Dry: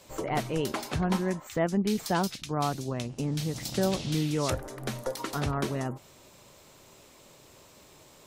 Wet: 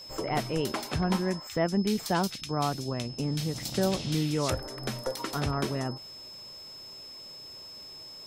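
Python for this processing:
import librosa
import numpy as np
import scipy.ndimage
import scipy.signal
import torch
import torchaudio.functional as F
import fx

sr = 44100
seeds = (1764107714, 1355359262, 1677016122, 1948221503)

y = x + 10.0 ** (-43.0 / 20.0) * np.sin(2.0 * np.pi * 5200.0 * np.arange(len(x)) / sr)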